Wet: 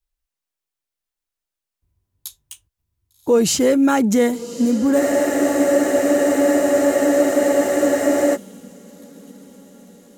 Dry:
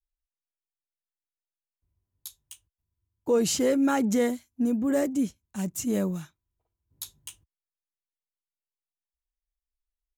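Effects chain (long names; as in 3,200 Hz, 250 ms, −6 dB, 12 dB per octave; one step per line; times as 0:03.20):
feedback delay with all-pass diffusion 1,153 ms, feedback 56%, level −14 dB
frozen spectrum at 0:05.01, 3.33 s
level +8 dB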